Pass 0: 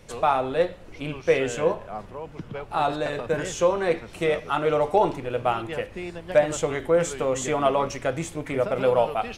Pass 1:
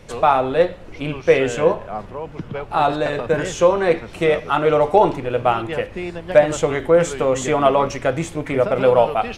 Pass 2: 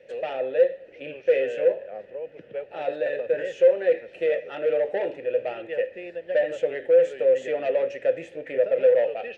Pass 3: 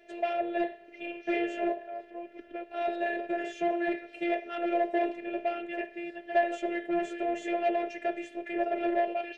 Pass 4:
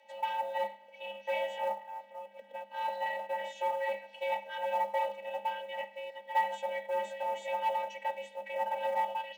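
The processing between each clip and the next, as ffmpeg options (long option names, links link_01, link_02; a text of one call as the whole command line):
ffmpeg -i in.wav -af "highshelf=frequency=5900:gain=-7,volume=6.5dB" out.wav
ffmpeg -i in.wav -filter_complex "[0:a]asoftclip=type=tanh:threshold=-12dB,asplit=3[link_01][link_02][link_03];[link_01]bandpass=frequency=530:width_type=q:width=8,volume=0dB[link_04];[link_02]bandpass=frequency=1840:width_type=q:width=8,volume=-6dB[link_05];[link_03]bandpass=frequency=2480:width_type=q:width=8,volume=-9dB[link_06];[link_04][link_05][link_06]amix=inputs=3:normalize=0,volume=3dB" out.wav
ffmpeg -i in.wav -af "afftfilt=real='hypot(re,im)*cos(PI*b)':imag='0':win_size=512:overlap=0.75,volume=3dB" out.wav
ffmpeg -i in.wav -af "acrusher=bits=8:mode=log:mix=0:aa=0.000001,afreqshift=200,volume=-3.5dB" out.wav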